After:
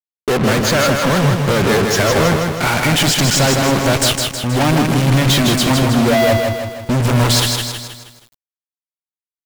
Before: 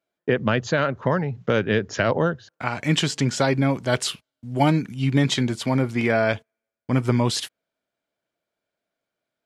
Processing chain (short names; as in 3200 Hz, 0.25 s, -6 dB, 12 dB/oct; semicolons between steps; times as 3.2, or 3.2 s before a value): 5.79–7 spectral contrast raised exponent 2.4; fuzz box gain 43 dB, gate -37 dBFS; lo-fi delay 0.159 s, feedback 55%, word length 7-bit, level -4 dB